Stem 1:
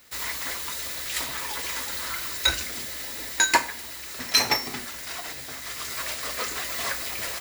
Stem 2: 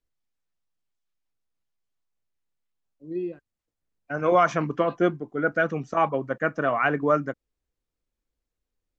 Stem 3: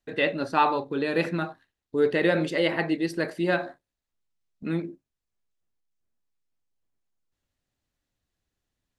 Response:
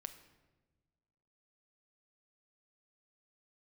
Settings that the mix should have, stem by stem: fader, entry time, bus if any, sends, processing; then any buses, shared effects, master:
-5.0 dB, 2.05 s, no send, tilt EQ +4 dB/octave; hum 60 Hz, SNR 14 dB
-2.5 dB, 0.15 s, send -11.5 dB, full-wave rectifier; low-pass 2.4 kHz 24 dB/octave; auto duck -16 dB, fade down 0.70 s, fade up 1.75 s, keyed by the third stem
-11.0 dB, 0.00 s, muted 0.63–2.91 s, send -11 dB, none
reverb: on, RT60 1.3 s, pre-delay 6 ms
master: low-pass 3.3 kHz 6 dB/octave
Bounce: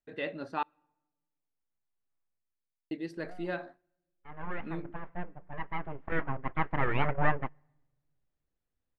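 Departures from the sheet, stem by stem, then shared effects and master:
stem 1: muted; reverb return -9.0 dB

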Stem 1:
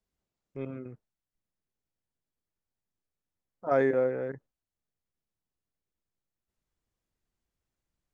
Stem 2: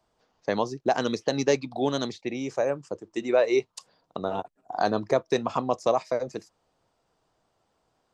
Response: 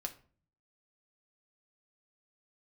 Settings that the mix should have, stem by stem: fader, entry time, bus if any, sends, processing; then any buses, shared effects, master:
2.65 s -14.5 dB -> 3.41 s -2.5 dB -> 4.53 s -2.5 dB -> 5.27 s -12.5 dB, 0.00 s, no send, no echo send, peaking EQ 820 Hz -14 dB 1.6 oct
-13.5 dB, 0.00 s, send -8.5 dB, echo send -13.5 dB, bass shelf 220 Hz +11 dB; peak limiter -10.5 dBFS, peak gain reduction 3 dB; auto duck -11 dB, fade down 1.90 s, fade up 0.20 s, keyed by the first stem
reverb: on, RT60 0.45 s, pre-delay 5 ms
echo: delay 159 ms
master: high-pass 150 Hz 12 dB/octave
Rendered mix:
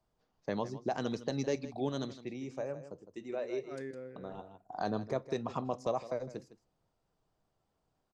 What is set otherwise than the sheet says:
stem 1 -14.5 dB -> -24.0 dB; master: missing high-pass 150 Hz 12 dB/octave

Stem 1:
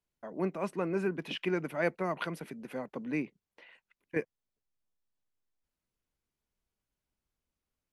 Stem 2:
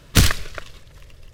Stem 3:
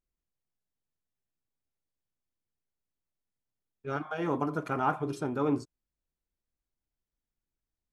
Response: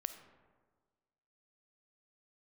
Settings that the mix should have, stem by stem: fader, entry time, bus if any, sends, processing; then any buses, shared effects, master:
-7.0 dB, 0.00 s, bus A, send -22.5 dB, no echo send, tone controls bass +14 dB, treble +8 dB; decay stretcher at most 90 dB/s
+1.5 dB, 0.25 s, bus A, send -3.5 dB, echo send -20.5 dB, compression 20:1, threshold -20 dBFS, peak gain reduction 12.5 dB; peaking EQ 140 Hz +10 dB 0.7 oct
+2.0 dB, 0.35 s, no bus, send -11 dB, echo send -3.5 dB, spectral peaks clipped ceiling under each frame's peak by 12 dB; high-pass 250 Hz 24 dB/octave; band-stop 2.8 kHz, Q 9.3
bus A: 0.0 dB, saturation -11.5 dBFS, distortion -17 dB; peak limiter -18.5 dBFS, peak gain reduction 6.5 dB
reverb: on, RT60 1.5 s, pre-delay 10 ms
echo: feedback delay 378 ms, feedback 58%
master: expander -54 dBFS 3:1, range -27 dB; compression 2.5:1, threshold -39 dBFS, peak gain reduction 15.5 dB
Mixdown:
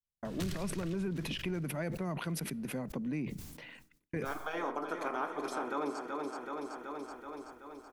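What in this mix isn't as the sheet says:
stem 1 -7.0 dB -> +3.5 dB; stem 2: send off; reverb return +8.5 dB

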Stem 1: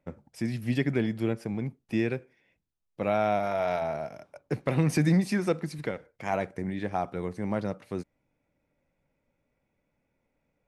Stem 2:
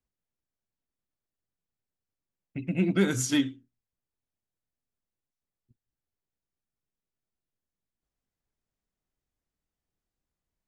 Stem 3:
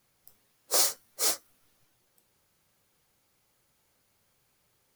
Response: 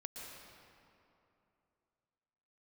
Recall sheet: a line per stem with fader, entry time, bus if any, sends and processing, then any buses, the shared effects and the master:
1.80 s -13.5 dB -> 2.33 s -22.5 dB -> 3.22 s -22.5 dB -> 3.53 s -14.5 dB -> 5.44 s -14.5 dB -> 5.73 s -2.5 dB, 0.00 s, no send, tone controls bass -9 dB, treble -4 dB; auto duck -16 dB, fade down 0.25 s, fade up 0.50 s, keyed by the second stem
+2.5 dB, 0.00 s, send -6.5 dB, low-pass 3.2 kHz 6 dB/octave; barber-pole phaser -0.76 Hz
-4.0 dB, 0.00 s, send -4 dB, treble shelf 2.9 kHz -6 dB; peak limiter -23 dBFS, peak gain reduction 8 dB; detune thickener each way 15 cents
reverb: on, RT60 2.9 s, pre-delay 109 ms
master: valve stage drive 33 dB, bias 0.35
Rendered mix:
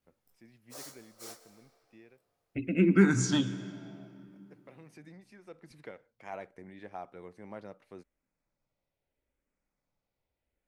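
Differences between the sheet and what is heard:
stem 1 -13.5 dB -> -23.0 dB; stem 3 -4.0 dB -> -10.5 dB; master: missing valve stage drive 33 dB, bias 0.35

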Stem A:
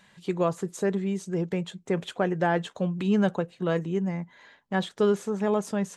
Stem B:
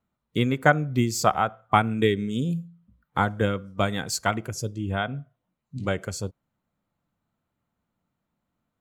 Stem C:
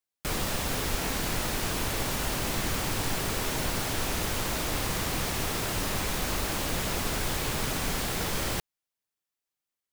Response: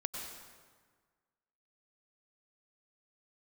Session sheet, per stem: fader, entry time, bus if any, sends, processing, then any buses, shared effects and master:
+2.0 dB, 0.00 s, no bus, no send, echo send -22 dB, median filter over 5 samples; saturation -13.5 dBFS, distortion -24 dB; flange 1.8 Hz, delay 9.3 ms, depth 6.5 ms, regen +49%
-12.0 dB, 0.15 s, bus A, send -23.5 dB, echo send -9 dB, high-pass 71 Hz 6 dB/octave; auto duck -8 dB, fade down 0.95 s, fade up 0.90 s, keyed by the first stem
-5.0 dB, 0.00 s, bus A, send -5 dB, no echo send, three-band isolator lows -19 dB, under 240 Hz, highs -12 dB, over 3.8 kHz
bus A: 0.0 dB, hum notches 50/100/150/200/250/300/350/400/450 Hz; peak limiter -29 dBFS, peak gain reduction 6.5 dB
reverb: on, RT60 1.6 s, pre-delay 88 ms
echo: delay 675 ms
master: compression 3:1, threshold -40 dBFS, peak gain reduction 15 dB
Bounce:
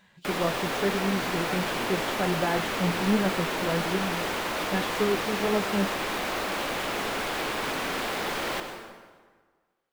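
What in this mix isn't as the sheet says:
stem C -5.0 dB -> +4.5 dB; master: missing compression 3:1, threshold -40 dBFS, peak gain reduction 15 dB

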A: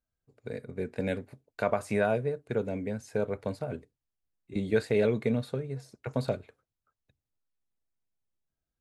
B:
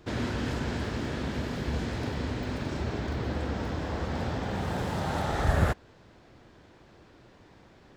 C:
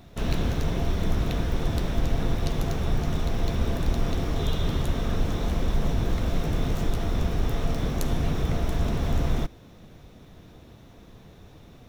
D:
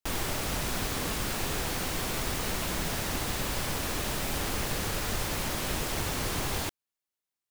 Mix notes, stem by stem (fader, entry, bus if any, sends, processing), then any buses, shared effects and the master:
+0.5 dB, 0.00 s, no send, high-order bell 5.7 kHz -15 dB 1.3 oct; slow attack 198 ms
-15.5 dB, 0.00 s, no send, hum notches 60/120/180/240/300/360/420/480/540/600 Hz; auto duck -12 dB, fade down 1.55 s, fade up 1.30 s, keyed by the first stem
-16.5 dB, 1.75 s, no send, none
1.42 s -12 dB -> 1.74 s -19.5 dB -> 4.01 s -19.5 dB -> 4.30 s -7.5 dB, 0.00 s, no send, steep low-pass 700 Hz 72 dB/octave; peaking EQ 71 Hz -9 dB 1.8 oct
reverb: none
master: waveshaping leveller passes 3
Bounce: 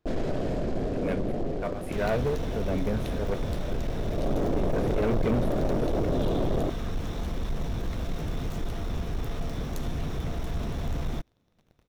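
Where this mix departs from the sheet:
stem A +0.5 dB -> -5.5 dB; stem D -12.0 dB -> -2.0 dB

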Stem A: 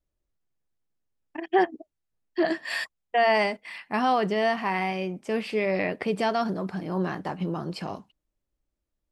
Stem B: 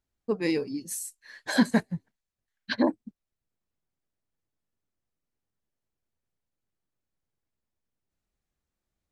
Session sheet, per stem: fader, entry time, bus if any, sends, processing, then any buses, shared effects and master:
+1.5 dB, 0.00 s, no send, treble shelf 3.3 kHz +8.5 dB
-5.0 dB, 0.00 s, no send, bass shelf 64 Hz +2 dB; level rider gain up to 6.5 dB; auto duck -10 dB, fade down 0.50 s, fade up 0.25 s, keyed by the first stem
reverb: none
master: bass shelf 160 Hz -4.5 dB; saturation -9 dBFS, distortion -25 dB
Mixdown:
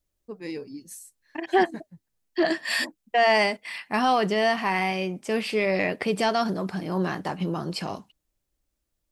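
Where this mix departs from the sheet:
stem B -5.0 dB -> -12.0 dB; master: missing bass shelf 160 Hz -4.5 dB

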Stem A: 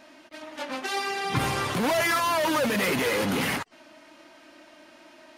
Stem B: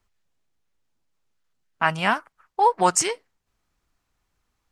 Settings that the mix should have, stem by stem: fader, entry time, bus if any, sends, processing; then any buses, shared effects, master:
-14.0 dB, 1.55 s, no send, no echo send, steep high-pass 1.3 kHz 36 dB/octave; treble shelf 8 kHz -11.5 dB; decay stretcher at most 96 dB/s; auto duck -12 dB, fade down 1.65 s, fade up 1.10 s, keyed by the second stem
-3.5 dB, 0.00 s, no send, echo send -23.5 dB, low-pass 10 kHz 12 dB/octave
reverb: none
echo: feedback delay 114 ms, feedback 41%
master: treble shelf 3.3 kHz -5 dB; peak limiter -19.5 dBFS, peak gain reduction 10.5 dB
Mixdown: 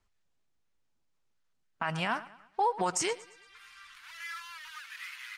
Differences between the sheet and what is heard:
stem A: entry 1.55 s -> 2.20 s; master: missing treble shelf 3.3 kHz -5 dB

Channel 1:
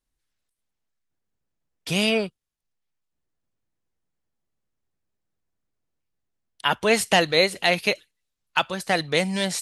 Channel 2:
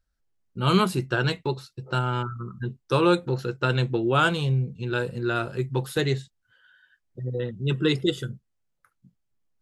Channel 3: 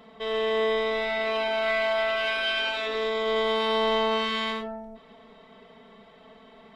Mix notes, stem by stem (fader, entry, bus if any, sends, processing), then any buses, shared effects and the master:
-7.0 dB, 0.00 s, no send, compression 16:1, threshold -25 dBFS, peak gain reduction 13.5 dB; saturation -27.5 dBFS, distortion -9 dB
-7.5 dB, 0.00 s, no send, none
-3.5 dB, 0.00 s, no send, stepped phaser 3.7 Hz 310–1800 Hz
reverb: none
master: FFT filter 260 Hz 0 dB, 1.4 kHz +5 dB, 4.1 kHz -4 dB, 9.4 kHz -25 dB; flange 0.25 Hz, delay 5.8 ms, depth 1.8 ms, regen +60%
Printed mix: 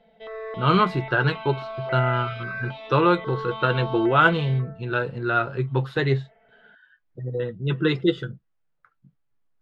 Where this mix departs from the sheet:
stem 1: muted; stem 2 -7.5 dB -> +4.5 dB

